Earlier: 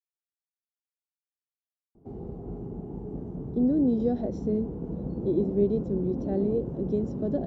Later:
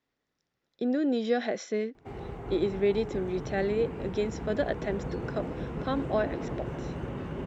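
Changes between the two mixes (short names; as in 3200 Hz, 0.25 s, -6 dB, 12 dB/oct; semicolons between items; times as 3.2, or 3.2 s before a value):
speech: entry -2.75 s; master: remove EQ curve 130 Hz 0 dB, 200 Hz +7 dB, 710 Hz -5 dB, 2100 Hz -28 dB, 4900 Hz -16 dB, 8400 Hz -18 dB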